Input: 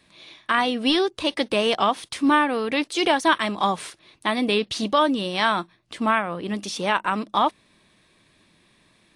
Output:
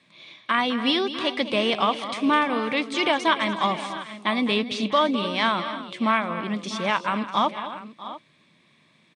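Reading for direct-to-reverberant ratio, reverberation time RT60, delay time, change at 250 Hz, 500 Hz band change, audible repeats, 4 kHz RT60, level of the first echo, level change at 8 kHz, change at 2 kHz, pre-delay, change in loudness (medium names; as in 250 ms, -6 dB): no reverb, no reverb, 207 ms, -1.0 dB, -2.0 dB, 4, no reverb, -12.5 dB, -6.0 dB, -1.0 dB, no reverb, -1.0 dB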